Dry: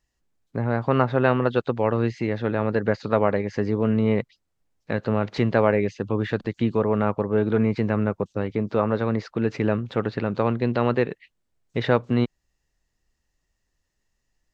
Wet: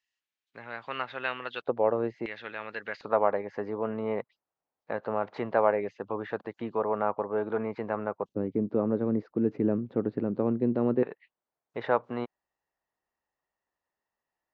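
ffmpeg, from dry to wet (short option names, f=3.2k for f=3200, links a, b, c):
-af "asetnsamples=n=441:p=0,asendcmd='1.62 bandpass f 620;2.26 bandpass f 2600;3.01 bandpass f 840;8.29 bandpass f 290;11.03 bandpass f 880',bandpass=f=2.8k:t=q:w=1.4:csg=0"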